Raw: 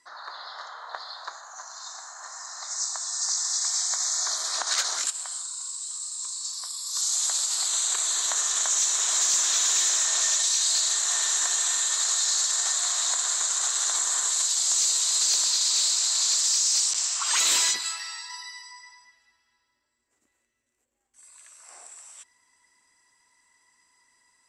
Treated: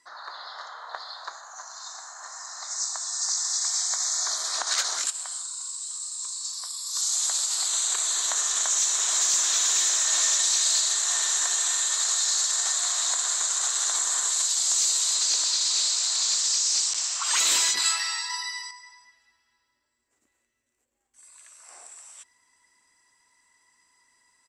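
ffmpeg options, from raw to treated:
-filter_complex "[0:a]asplit=2[a][b];[b]afade=t=in:st=9.68:d=0.01,afade=t=out:st=10.43:d=0.01,aecho=0:1:380|760|1140|1520:0.473151|0.165603|0.057961|0.0202864[c];[a][c]amix=inputs=2:normalize=0,asettb=1/sr,asplit=3[d][e][f];[d]atrim=end=15.144[g];[e]atrim=start=15.14:end=17.24,asetpts=PTS-STARTPTS,afade=t=in:d=0.004:c=qsin,afade=t=out:st=2.096:d=0.004:c=qsin,lowpass=8.4k[h];[f]atrim=start=17.236[i];[g][h]acrossfade=d=0.004:c1=hsin:c2=qsin[j];[j][i]acrossfade=d=0.004:c1=qsin:c2=hsin,asettb=1/sr,asplit=3[k][l][m];[k]atrim=end=17.774[n];[l]atrim=start=17.77:end=18.71,asetpts=PTS-STARTPTS,afade=t=in:d=0.004:c=qsin,afade=t=out:st=0.936:d=0.004:c=qsin,acontrast=90[o];[m]atrim=start=18.706[p];[n][o]acrossfade=d=0.004:c1=hsin:c2=qsin[q];[q][p]acrossfade=d=0.004:c1=qsin:c2=hsin"

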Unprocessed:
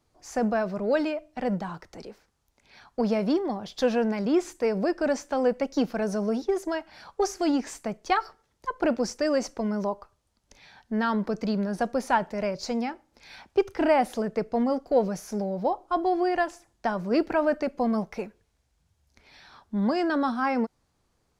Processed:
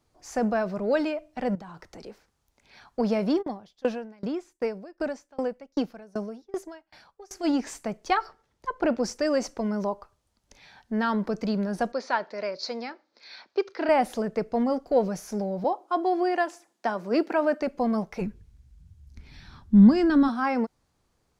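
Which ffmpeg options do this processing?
-filter_complex "[0:a]asettb=1/sr,asplit=3[a][b][c];[a]atrim=end=1.554[d];[b]atrim=start=1.55:end=2.06,asetpts=PTS-STARTPTS,afade=t=in:d=0.004:c=qsin,afade=t=out:st=0.506:d=0.004:c=qsin,acompressor=threshold=-39dB:ratio=6:attack=3.2:release=140:knee=1:detection=peak[e];[c]atrim=start=2.056[f];[d][e]acrossfade=d=0.004:c1=hsin:c2=qsin[g];[g][f]acrossfade=d=0.004:c1=qsin:c2=hsin,asplit=3[h][i][j];[h]afade=t=out:st=3.41:d=0.02[k];[i]aeval=exprs='val(0)*pow(10,-29*if(lt(mod(2.6*n/s,1),2*abs(2.6)/1000),1-mod(2.6*n/s,1)/(2*abs(2.6)/1000),(mod(2.6*n/s,1)-2*abs(2.6)/1000)/(1-2*abs(2.6)/1000))/20)':c=same,afade=t=in:st=3.41:d=0.02,afade=t=out:st=7.43:d=0.02[l];[j]afade=t=in:st=7.43:d=0.02[m];[k][l][m]amix=inputs=3:normalize=0,asettb=1/sr,asplit=3[n][o][p];[n]atrim=end=8.154[q];[o]atrim=start=8.15:end=9.04,asetpts=PTS-STARTPTS,afade=t=in:d=0.004:c=qsin,afade=t=out:st=0.886:d=0.004:c=qsin,highshelf=f=6.3k:g=-7.5[r];[p]atrim=start=9.036[s];[q][r]acrossfade=d=0.004:c1=hsin:c2=qsin[t];[t][s]acrossfade=d=0.004:c1=qsin:c2=hsin,asettb=1/sr,asplit=3[u][v][w];[u]atrim=end=11.924[x];[v]atrim=start=11.92:end=13.89,asetpts=PTS-STARTPTS,afade=t=in:d=0.004:c=qsin,afade=t=out:st=1.966:d=0.004:c=qsin,highpass=400,equalizer=f=810:t=q:w=4:g=-7,equalizer=f=2.9k:t=q:w=4:g=-5,equalizer=f=4.3k:t=q:w=4:g=8,lowpass=f=5.5k:w=0.5412,lowpass=f=5.5k:w=1.3066[y];[w]atrim=start=13.886[z];[x][y]acrossfade=d=0.004:c1=hsin:c2=qsin[aa];[aa][z]acrossfade=d=0.004:c1=qsin:c2=hsin,asettb=1/sr,asplit=3[ab][ac][ad];[ab]atrim=end=15.644[ae];[ac]atrim=start=15.64:end=17.62,asetpts=PTS-STARTPTS,afade=t=in:d=0.004:c=qsin,afade=t=out:st=1.976:d=0.004:c=qsin,highpass=f=220:w=0.5412,highpass=f=220:w=1.3066[af];[ad]atrim=start=17.616[ag];[ae][af]acrossfade=d=0.004:c1=hsin:c2=qsin[ah];[ah][ag]acrossfade=d=0.004:c1=qsin:c2=hsin,asplit=3[ai][aj][ak];[ai]afade=t=out:st=18.2:d=0.02[al];[aj]asubboost=boost=10.5:cutoff=180,afade=t=in:st=18.2:d=0.02,afade=t=out:st=20.27:d=0.02[am];[ak]afade=t=in:st=20.27:d=0.02[an];[al][am][an]amix=inputs=3:normalize=0"

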